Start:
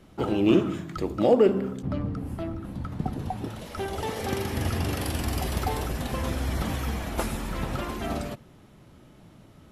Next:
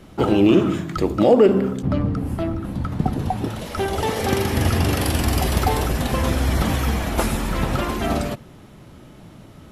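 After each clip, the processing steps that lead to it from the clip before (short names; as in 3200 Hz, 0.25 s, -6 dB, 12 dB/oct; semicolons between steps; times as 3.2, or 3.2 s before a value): maximiser +12.5 dB; gain -4 dB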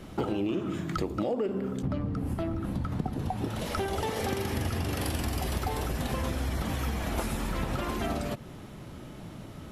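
compressor 6:1, threshold -28 dBFS, peak gain reduction 17.5 dB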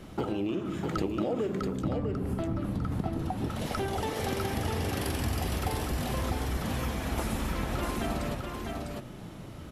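echo 0.651 s -4 dB; gain -1.5 dB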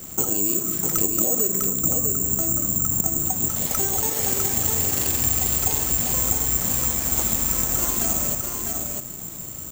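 careless resampling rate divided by 6×, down none, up zero stuff; in parallel at -8.5 dB: bit-crush 5-bit; on the sum: gain -2 dB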